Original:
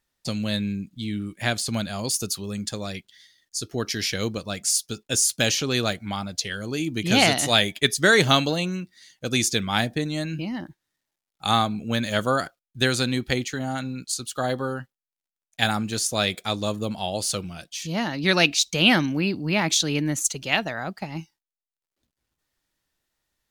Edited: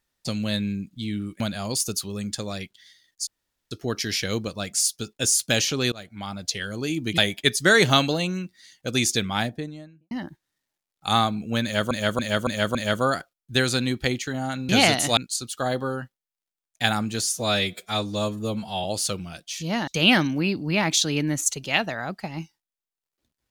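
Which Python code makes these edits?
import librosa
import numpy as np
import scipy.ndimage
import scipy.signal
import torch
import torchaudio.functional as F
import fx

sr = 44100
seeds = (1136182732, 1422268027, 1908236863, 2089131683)

y = fx.studio_fade_out(x, sr, start_s=9.54, length_s=0.95)
y = fx.edit(y, sr, fx.cut(start_s=1.4, length_s=0.34),
    fx.insert_room_tone(at_s=3.61, length_s=0.44),
    fx.fade_in_from(start_s=5.82, length_s=0.57, floor_db=-23.0),
    fx.move(start_s=7.08, length_s=0.48, to_s=13.95),
    fx.repeat(start_s=12.01, length_s=0.28, count=5),
    fx.stretch_span(start_s=16.02, length_s=1.07, factor=1.5),
    fx.cut(start_s=18.12, length_s=0.54), tone=tone)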